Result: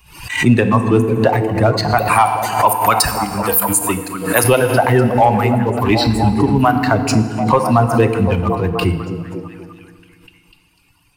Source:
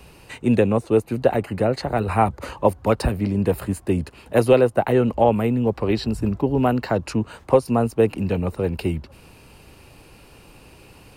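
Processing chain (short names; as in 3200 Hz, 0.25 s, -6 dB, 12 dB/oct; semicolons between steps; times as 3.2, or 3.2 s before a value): per-bin expansion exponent 1.5; 1.98–4.44 RIAA curve recording; reverb removal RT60 1.1 s; ten-band EQ 250 Hz -4 dB, 500 Hz -9 dB, 1000 Hz +8 dB; sample leveller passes 1; delay with a stepping band-pass 0.248 s, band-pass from 210 Hz, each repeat 0.7 oct, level -5 dB; FDN reverb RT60 1.8 s, low-frequency decay 1.3×, high-frequency decay 0.85×, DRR 9 dB; maximiser +11.5 dB; backwards sustainer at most 91 dB/s; gain -1.5 dB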